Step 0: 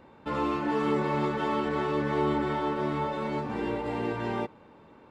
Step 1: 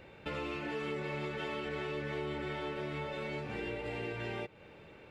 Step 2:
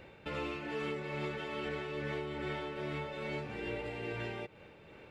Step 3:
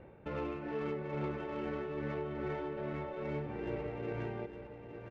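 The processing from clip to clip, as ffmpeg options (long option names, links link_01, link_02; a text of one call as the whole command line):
ffmpeg -i in.wav -af "equalizer=frequency=250:width_type=o:width=0.67:gain=-11,equalizer=frequency=1000:width_type=o:width=0.67:gain=-12,equalizer=frequency=2500:width_type=o:width=0.67:gain=7,acompressor=threshold=-42dB:ratio=3,volume=3.5dB" out.wav
ffmpeg -i in.wav -af "tremolo=f=2.4:d=0.35,volume=1dB" out.wav
ffmpeg -i in.wav -af "adynamicsmooth=sensitivity=2:basefreq=1200,aecho=1:1:860:0.335,volume=1.5dB" out.wav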